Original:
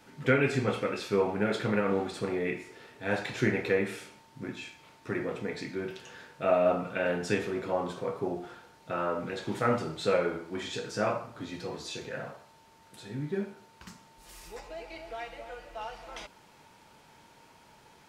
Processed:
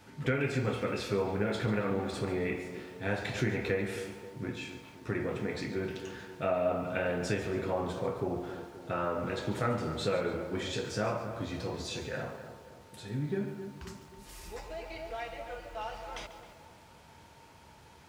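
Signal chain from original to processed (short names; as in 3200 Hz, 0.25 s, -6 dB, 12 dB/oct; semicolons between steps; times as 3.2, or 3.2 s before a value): bell 76 Hz +13 dB 1 oct; compressor 2.5:1, threshold -29 dBFS, peak gain reduction 8 dB; on a send: tape echo 0.265 s, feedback 56%, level -9 dB, low-pass 1200 Hz; on the sum: lo-fi delay 0.142 s, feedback 35%, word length 9-bit, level -13 dB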